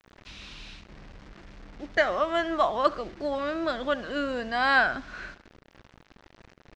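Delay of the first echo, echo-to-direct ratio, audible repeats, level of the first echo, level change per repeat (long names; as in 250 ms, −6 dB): 70 ms, −20.0 dB, 2, −21.0 dB, −5.0 dB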